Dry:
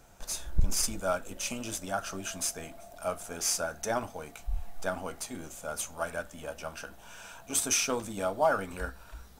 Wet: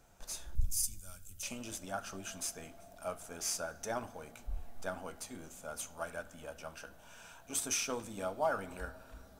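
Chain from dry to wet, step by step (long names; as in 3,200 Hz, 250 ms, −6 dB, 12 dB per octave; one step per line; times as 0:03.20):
0:00.55–0:01.43: drawn EQ curve 100 Hz 0 dB, 160 Hz −12 dB, 700 Hz −27 dB, 11,000 Hz +7 dB
on a send: convolution reverb RT60 3.5 s, pre-delay 41 ms, DRR 18.5 dB
on the sum: level −7 dB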